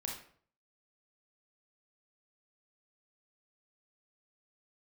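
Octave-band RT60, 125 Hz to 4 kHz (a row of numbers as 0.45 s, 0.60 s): 0.65 s, 0.55 s, 0.55 s, 0.50 s, 0.45 s, 0.40 s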